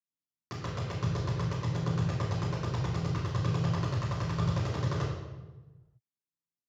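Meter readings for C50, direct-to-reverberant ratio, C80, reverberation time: 1.0 dB, -9.5 dB, 3.5 dB, 1.2 s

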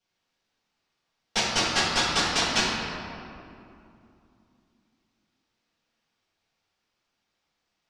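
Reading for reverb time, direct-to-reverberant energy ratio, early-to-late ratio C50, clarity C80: 2.6 s, -10.5 dB, -1.0 dB, 0.5 dB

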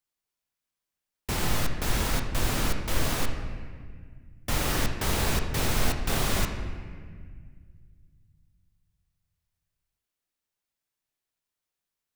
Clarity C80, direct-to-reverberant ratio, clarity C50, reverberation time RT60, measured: 8.0 dB, 4.0 dB, 6.0 dB, 1.8 s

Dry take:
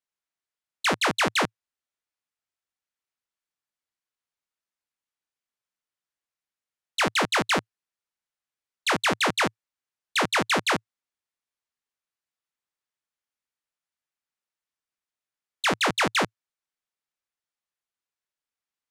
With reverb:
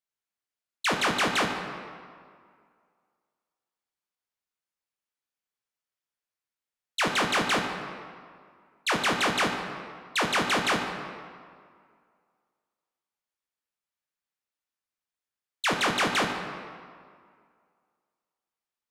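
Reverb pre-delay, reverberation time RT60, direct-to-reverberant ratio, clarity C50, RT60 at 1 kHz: 7 ms, 2.1 s, 3.0 dB, 5.0 dB, 2.1 s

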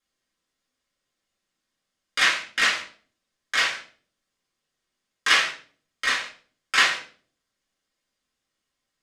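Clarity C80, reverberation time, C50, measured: 13.0 dB, 0.45 s, 8.5 dB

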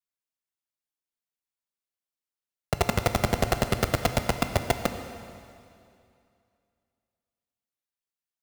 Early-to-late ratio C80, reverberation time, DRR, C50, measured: 9.5 dB, 2.5 s, 7.5 dB, 8.5 dB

